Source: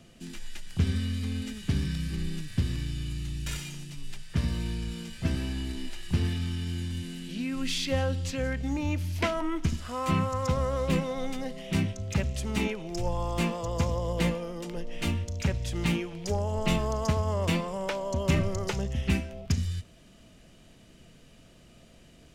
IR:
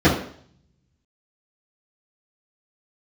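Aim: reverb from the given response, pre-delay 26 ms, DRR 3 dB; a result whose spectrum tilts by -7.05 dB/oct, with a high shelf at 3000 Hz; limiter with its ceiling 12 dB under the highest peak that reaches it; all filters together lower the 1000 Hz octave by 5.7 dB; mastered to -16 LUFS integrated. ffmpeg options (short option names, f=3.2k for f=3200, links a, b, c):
-filter_complex "[0:a]equalizer=f=1k:t=o:g=-8,highshelf=f=3k:g=7.5,alimiter=level_in=0.5dB:limit=-24dB:level=0:latency=1,volume=-0.5dB,asplit=2[a][b];[1:a]atrim=start_sample=2205,adelay=26[c];[b][c]afir=irnorm=-1:irlink=0,volume=-25.5dB[d];[a][d]amix=inputs=2:normalize=0,volume=11.5dB"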